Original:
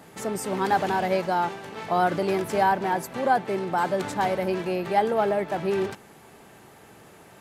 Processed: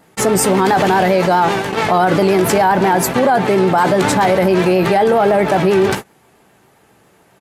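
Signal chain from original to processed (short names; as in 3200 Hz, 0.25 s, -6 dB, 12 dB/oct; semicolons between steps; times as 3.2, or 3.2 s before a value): vibrato 7.4 Hz 49 cents; doubler 16 ms -12 dB; gate -37 dBFS, range -56 dB; maximiser +18.5 dB; fast leveller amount 50%; gain -4.5 dB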